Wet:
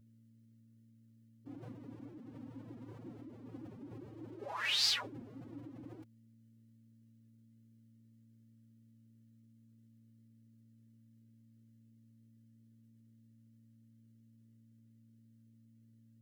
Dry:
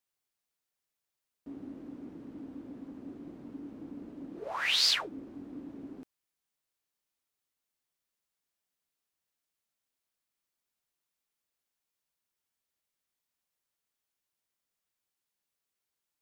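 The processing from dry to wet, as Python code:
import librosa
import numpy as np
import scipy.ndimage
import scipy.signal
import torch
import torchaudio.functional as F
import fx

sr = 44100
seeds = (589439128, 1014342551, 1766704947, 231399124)

y = fx.add_hum(x, sr, base_hz=60, snr_db=17)
y = fx.pitch_keep_formants(y, sr, semitones=11.0)
y = y * 10.0 ** (-4.0 / 20.0)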